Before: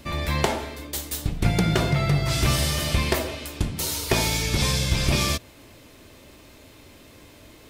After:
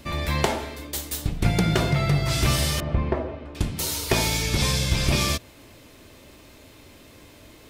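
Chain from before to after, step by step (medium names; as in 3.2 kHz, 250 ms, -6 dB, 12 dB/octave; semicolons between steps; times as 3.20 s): 2.80–3.55 s: low-pass 1.1 kHz 12 dB/octave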